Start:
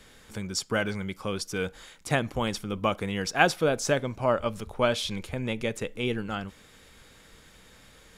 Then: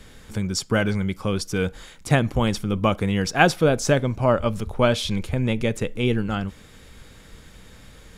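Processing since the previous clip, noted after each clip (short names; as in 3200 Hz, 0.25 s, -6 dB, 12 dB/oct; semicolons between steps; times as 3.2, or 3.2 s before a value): low shelf 250 Hz +9 dB; gain +3.5 dB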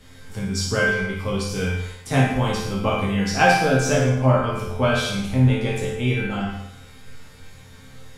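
resonator bank F2 fifth, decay 0.27 s; on a send: flutter echo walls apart 9.4 m, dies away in 0.6 s; on the sum: plate-style reverb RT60 0.67 s, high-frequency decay 0.85×, DRR -1 dB; gain +7.5 dB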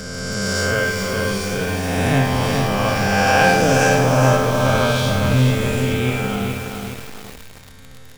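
spectral swells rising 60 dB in 2.58 s; crackle 40/s -24 dBFS; lo-fi delay 0.418 s, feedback 55%, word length 5-bit, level -4 dB; gain -2 dB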